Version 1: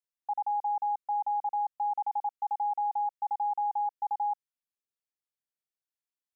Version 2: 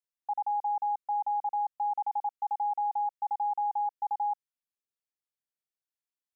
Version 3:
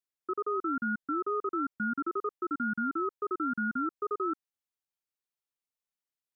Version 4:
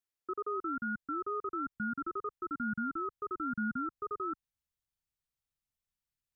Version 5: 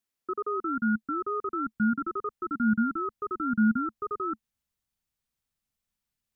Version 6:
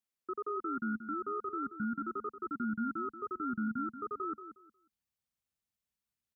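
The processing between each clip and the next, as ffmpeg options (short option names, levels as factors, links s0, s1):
-af anull
-af "aeval=exprs='val(0)*sin(2*PI*510*n/s+510*0.2/1.1*sin(2*PI*1.1*n/s))':c=same,volume=1.19"
-filter_complex "[0:a]asubboost=boost=10.5:cutoff=120,asplit=2[s0][s1];[s1]alimiter=level_in=2.24:limit=0.0631:level=0:latency=1:release=192,volume=0.447,volume=0.944[s2];[s0][s2]amix=inputs=2:normalize=0,volume=0.447"
-af "equalizer=f=220:w=3.9:g=8.5,volume=1.78"
-af "highpass=53,alimiter=limit=0.0794:level=0:latency=1:release=32,aecho=1:1:181|362|543:0.282|0.0648|0.0149,volume=0.473"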